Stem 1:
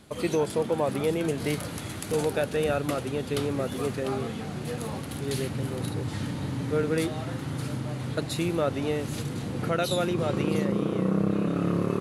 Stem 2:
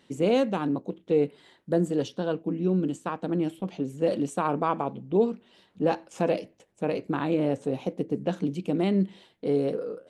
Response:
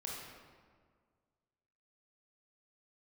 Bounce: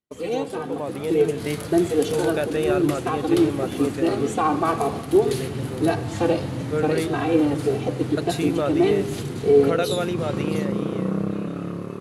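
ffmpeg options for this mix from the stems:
-filter_complex "[0:a]volume=-7dB[link_01];[1:a]aecho=1:1:2.6:0.77,asplit=2[link_02][link_03];[link_03]adelay=2.7,afreqshift=1.7[link_04];[link_02][link_04]amix=inputs=2:normalize=1,volume=-4.5dB,asplit=2[link_05][link_06];[link_06]volume=-8dB[link_07];[2:a]atrim=start_sample=2205[link_08];[link_07][link_08]afir=irnorm=-1:irlink=0[link_09];[link_01][link_05][link_09]amix=inputs=3:normalize=0,agate=range=-33dB:threshold=-38dB:ratio=3:detection=peak,dynaudnorm=framelen=240:gausssize=9:maxgain=9dB"

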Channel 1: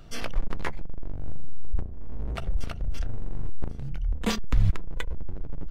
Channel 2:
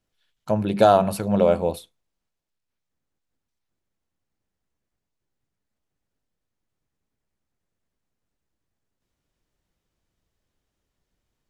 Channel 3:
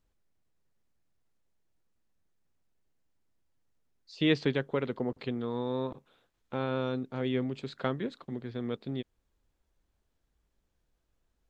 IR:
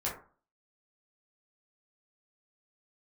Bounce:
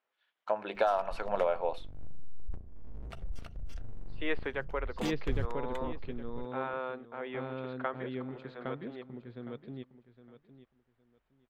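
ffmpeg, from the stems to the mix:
-filter_complex "[0:a]adelay=750,volume=-12dB[link_01];[1:a]lowshelf=frequency=450:gain=-7,volume=2.5dB,asplit=2[link_02][link_03];[2:a]lowpass=2900,volume=2dB,asplit=2[link_04][link_05];[link_05]volume=-10dB[link_06];[link_03]apad=whole_len=284468[link_07];[link_01][link_07]sidechaincompress=threshold=-16dB:ratio=8:attack=31:release=1240[link_08];[link_02][link_04]amix=inputs=2:normalize=0,highpass=690,lowpass=2100,acompressor=threshold=-25dB:ratio=6,volume=0dB[link_09];[link_06]aecho=0:1:812|1624|2436:1|0.21|0.0441[link_10];[link_08][link_09][link_10]amix=inputs=3:normalize=0"

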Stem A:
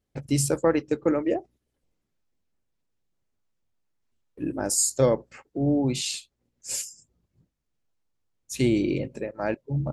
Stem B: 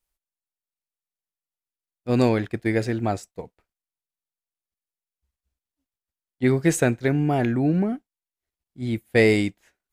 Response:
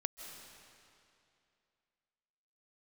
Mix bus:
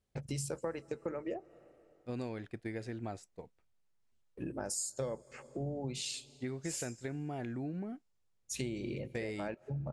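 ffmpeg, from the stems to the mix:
-filter_complex "[0:a]equalizer=frequency=290:width_type=o:width=0.25:gain=-10,volume=-3dB,asplit=2[link_01][link_02];[link_02]volume=-21dB[link_03];[1:a]volume=-13dB[link_04];[2:a]atrim=start_sample=2205[link_05];[link_03][link_05]afir=irnorm=-1:irlink=0[link_06];[link_01][link_04][link_06]amix=inputs=3:normalize=0,lowpass=frequency=11000:width=0.5412,lowpass=frequency=11000:width=1.3066,acompressor=threshold=-37dB:ratio=4"

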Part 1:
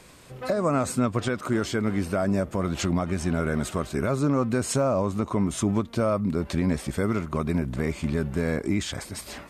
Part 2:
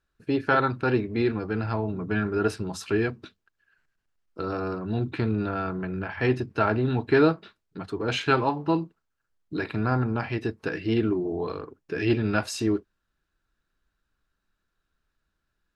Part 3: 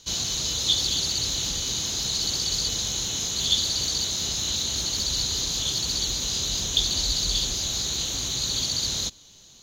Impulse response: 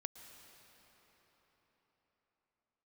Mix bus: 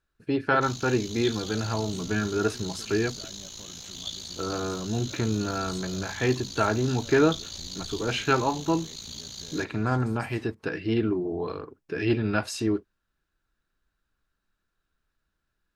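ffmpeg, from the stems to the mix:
-filter_complex "[0:a]acompressor=threshold=-32dB:ratio=6,adelay=1050,volume=-14dB[link_01];[1:a]volume=-1dB[link_02];[2:a]aeval=exprs='val(0)*sin(2*PI*28*n/s)':channel_layout=same,adelay=550,volume=-13.5dB,asplit=2[link_03][link_04];[link_04]volume=-5.5dB[link_05];[3:a]atrim=start_sample=2205[link_06];[link_05][link_06]afir=irnorm=-1:irlink=0[link_07];[link_01][link_02][link_03][link_07]amix=inputs=4:normalize=0"

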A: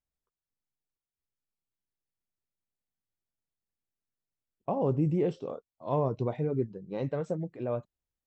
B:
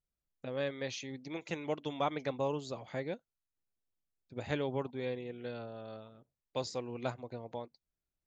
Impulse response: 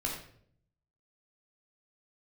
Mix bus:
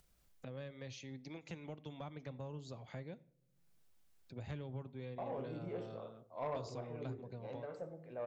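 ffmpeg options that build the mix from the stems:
-filter_complex "[0:a]highpass=frequency=1000:poles=1,highshelf=frequency=3100:gain=-10.5,adelay=500,volume=2.5dB,asplit=2[link_01][link_02];[link_02]volume=-16dB[link_03];[1:a]acrossover=split=180[link_04][link_05];[link_05]acompressor=threshold=-49dB:ratio=4[link_06];[link_04][link_06]amix=inputs=2:normalize=0,volume=-1dB,asplit=3[link_07][link_08][link_09];[link_08]volume=-20.5dB[link_10];[link_09]apad=whole_len=386737[link_11];[link_01][link_11]sidechaincompress=threshold=-59dB:ratio=3:attack=8.2:release=1480[link_12];[2:a]atrim=start_sample=2205[link_13];[link_03][link_10]amix=inputs=2:normalize=0[link_14];[link_14][link_13]afir=irnorm=-1:irlink=0[link_15];[link_12][link_07][link_15]amix=inputs=3:normalize=0,acompressor=mode=upward:threshold=-56dB:ratio=2.5,asoftclip=type=tanh:threshold=-32.5dB"

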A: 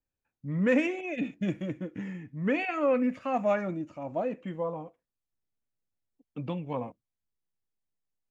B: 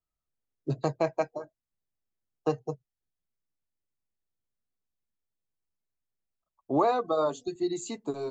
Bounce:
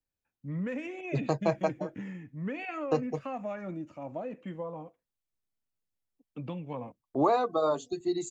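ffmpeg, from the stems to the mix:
ffmpeg -i stem1.wav -i stem2.wav -filter_complex "[0:a]acrossover=split=130[link_01][link_02];[link_02]acompressor=threshold=-31dB:ratio=6[link_03];[link_01][link_03]amix=inputs=2:normalize=0,volume=-2.5dB[link_04];[1:a]agate=range=-17dB:threshold=-51dB:ratio=16:detection=peak,adelay=450,volume=-0.5dB[link_05];[link_04][link_05]amix=inputs=2:normalize=0" out.wav

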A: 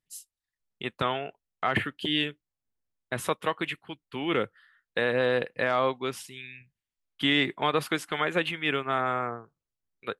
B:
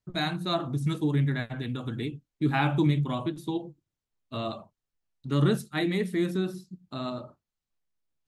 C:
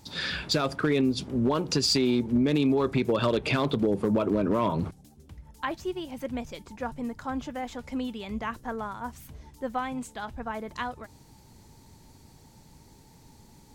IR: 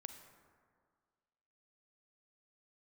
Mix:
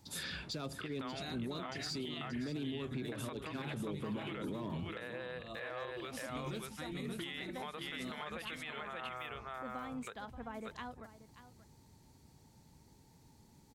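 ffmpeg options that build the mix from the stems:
-filter_complex "[0:a]equalizer=frequency=260:width_type=o:width=0.92:gain=-14.5,volume=-2.5dB,asplit=3[link_01][link_02][link_03];[link_02]volume=-11.5dB[link_04];[1:a]highshelf=frequency=3500:gain=9.5,adelay=1050,volume=-9.5dB,asplit=2[link_05][link_06];[link_06]volume=-12.5dB[link_07];[2:a]highpass=frequency=90:poles=1,lowshelf=frequency=180:gain=6,acrossover=split=410|3000[link_08][link_09][link_10];[link_09]acompressor=threshold=-32dB:ratio=6[link_11];[link_08][link_11][link_10]amix=inputs=3:normalize=0,volume=-10dB,asplit=2[link_12][link_13];[link_13]volume=-15dB[link_14];[link_03]apad=whole_len=605971[link_15];[link_12][link_15]sidechaincompress=threshold=-38dB:ratio=8:attack=27:release=106[link_16];[link_01][link_05]amix=inputs=2:normalize=0,acompressor=threshold=-39dB:ratio=5,volume=0dB[link_17];[link_04][link_07][link_14]amix=inputs=3:normalize=0,aecho=0:1:581:1[link_18];[link_16][link_17][link_18]amix=inputs=3:normalize=0,alimiter=level_in=8dB:limit=-24dB:level=0:latency=1:release=82,volume=-8dB"

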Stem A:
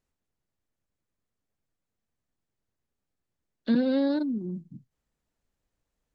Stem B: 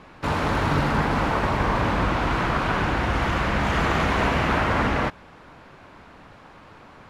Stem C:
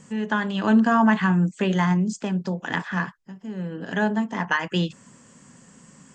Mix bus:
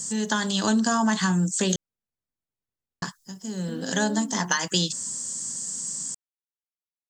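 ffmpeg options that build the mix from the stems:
ffmpeg -i stem1.wav -i stem2.wav -i stem3.wav -filter_complex "[0:a]alimiter=limit=-20.5dB:level=0:latency=1,volume=-9dB[link_01];[2:a]aexciter=amount=11.1:drive=7.2:freq=3900,volume=0dB,asplit=3[link_02][link_03][link_04];[link_02]atrim=end=1.76,asetpts=PTS-STARTPTS,afade=type=out:start_time=1.756:duration=0.004:curve=hsin[link_05];[link_03]atrim=start=1.76:end=3.02,asetpts=PTS-STARTPTS,volume=0[link_06];[link_04]atrim=start=3.02,asetpts=PTS-STARTPTS,afade=type=in:duration=0.004:curve=hsin[link_07];[link_05][link_06][link_07]concat=n=3:v=0:a=1[link_08];[link_01][link_08]amix=inputs=2:normalize=0,acompressor=threshold=-20dB:ratio=3" out.wav

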